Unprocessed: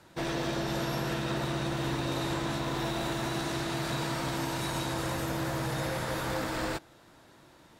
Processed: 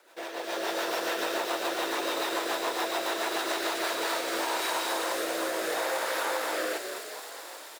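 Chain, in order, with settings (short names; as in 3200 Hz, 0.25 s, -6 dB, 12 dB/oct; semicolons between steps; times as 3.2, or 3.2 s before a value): on a send: frequency-shifting echo 0.21 s, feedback 48%, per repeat +54 Hz, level -11 dB; on the sum: bit-crush 10-bit; rotary speaker horn 7 Hz, later 0.7 Hz, at 3.54; in parallel at -5 dB: sample-rate reducer 8800 Hz, jitter 0%; on the sum: HPF 440 Hz 24 dB/oct; compressor, threshold -36 dBFS, peak gain reduction 8.5 dB; thin delay 0.26 s, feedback 76%, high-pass 4500 Hz, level -3.5 dB; AGC gain up to 9 dB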